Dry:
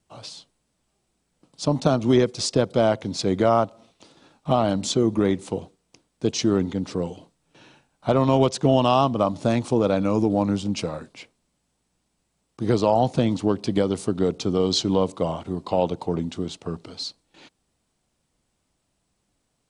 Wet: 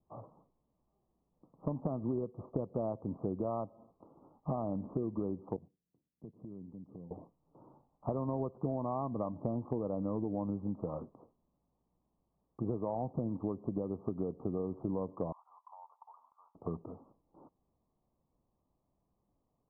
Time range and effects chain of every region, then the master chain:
0:05.56–0:07.11: mu-law and A-law mismatch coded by A + resonant band-pass 160 Hz, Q 1.1 + downward compressor 4 to 1, threshold −42 dBFS
0:15.32–0:16.55: mu-law and A-law mismatch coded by A + elliptic high-pass filter 910 Hz, stop band 60 dB + downward compressor 3 to 1, threshold −49 dBFS
whole clip: Butterworth low-pass 1,200 Hz 96 dB per octave; dynamic equaliser 930 Hz, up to −3 dB, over −29 dBFS, Q 0.72; downward compressor, threshold −27 dBFS; level −5 dB

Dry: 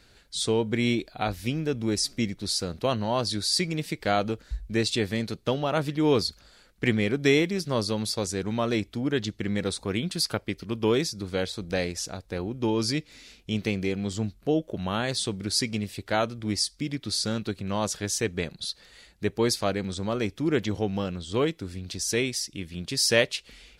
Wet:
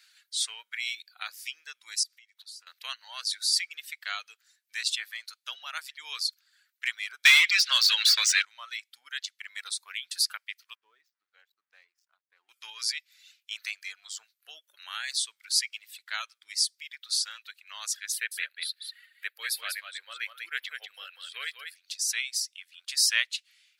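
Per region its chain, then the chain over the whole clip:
0:02.03–0:02.67: high-pass filter 110 Hz + downward compressor 16 to 1, threshold −40 dBFS
0:07.25–0:08.45: meter weighting curve D + mid-hump overdrive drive 24 dB, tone 1,500 Hz, clips at −2.5 dBFS + multiband upward and downward compressor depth 70%
0:10.75–0:12.49: resonant band-pass 150 Hz, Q 1.2 + slack as between gear wheels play −57 dBFS
0:18.12–0:21.76: drawn EQ curve 220 Hz 0 dB, 540 Hz +9 dB, 930 Hz −7 dB, 1,600 Hz +5 dB, 4,100 Hz −1 dB, 6,300 Hz −14 dB, 11,000 Hz +3 dB + single-tap delay 193 ms −4.5 dB
whole clip: reverb reduction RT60 1.4 s; high-pass filter 1,500 Hz 24 dB per octave; high-shelf EQ 9,200 Hz +5 dB

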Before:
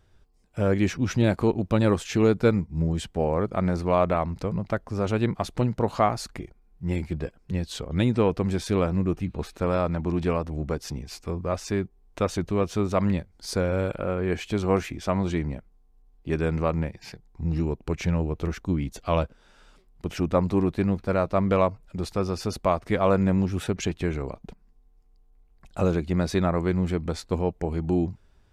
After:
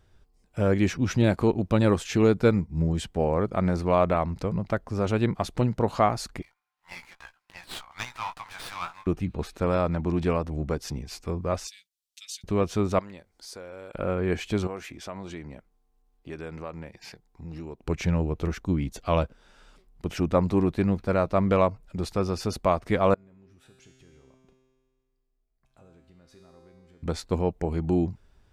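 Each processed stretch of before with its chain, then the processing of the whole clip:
0:06.42–0:09.07: Butterworth high-pass 840 Hz 48 dB per octave + double-tracking delay 17 ms −6 dB + windowed peak hold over 5 samples
0:11.67–0:12.44: inverse Chebyshev high-pass filter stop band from 970 Hz, stop band 60 dB + comb filter 5.3 ms, depth 70%
0:12.99–0:13.95: bass and treble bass −14 dB, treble +3 dB + downward compressor 2.5 to 1, threshold −45 dBFS
0:14.67–0:17.84: low-shelf EQ 210 Hz −10.5 dB + downward compressor 2 to 1, threshold −40 dBFS
0:23.14–0:27.03: downward compressor 3 to 1, threshold −38 dBFS + tuned comb filter 130 Hz, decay 1.8 s, mix 90%
whole clip: no processing

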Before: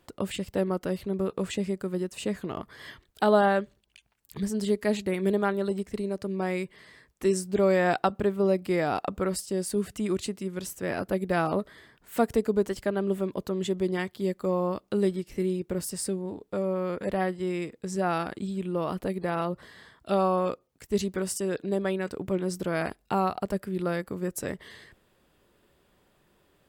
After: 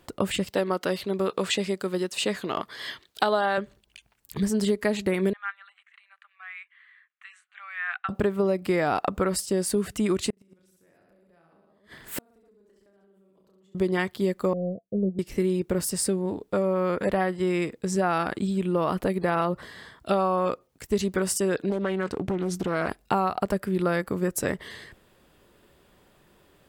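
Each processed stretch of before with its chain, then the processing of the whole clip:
0:00.47–0:03.58: high-pass filter 350 Hz 6 dB per octave + parametric band 4,000 Hz +7 dB 1.1 octaves
0:05.33–0:08.09: Butterworth high-pass 860 Hz 72 dB per octave + head-to-tape spacing loss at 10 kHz 35 dB + phaser with its sweep stopped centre 2,200 Hz, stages 4
0:10.30–0:13.75: reverse bouncing-ball delay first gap 30 ms, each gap 1.25×, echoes 5, each echo −2 dB + downward compressor 4 to 1, threshold −28 dBFS + gate with flip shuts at −25 dBFS, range −36 dB
0:14.53–0:15.19: power curve on the samples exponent 1.4 + Chebyshev low-pass with heavy ripple 700 Hz, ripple 9 dB
0:21.70–0:22.89: high-shelf EQ 12,000 Hz −12 dB + downward compressor 4 to 1, threshold −29 dBFS + highs frequency-modulated by the lows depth 0.26 ms
whole clip: dynamic equaliser 1,300 Hz, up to +4 dB, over −40 dBFS, Q 0.73; downward compressor 6 to 1, threshold −26 dBFS; level +6 dB

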